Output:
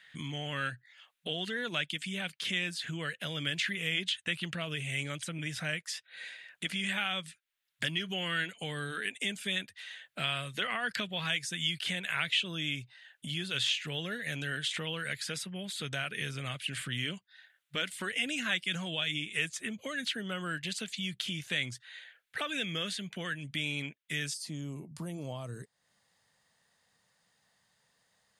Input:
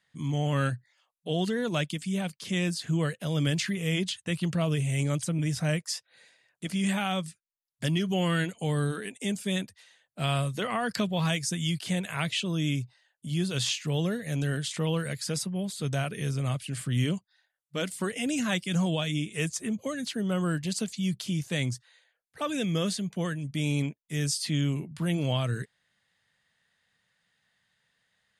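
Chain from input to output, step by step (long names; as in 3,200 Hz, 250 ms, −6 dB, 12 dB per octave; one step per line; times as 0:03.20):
low-shelf EQ 270 Hz −7 dB
downward compressor 2.5 to 1, threshold −50 dBFS, peak gain reduction 16.5 dB
flat-topped bell 2,300 Hz +10.5 dB, from 0:24.33 −8.5 dB
level +6.5 dB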